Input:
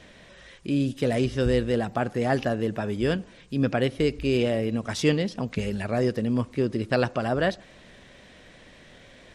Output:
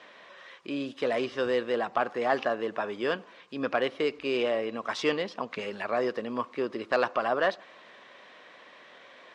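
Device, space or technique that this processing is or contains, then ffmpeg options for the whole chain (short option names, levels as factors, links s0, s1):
intercom: -af "highpass=440,lowpass=4100,equalizer=f=1100:t=o:w=0.5:g=9,asoftclip=type=tanh:threshold=0.237"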